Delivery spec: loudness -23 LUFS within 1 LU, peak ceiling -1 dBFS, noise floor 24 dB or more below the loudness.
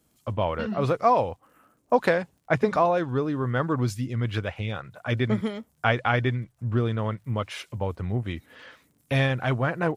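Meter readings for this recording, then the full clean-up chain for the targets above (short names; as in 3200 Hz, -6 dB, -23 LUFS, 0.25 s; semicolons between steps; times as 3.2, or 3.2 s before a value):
ticks 33/s; loudness -26.5 LUFS; peak -6.0 dBFS; loudness target -23.0 LUFS
-> de-click; gain +3.5 dB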